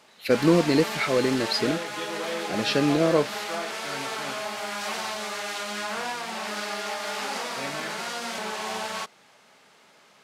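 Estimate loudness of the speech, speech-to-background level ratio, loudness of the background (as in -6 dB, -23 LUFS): -24.0 LUFS, 7.0 dB, -31.0 LUFS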